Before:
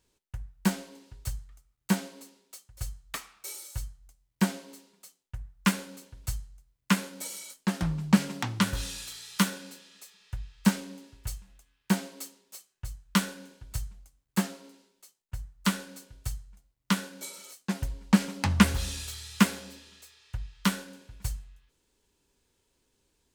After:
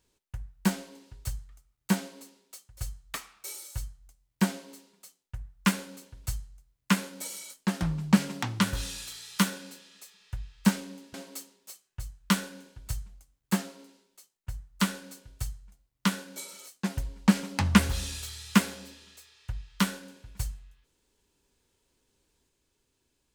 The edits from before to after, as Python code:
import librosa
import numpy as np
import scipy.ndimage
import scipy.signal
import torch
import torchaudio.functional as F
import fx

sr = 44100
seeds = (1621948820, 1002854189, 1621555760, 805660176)

y = fx.edit(x, sr, fx.cut(start_s=11.14, length_s=0.85), tone=tone)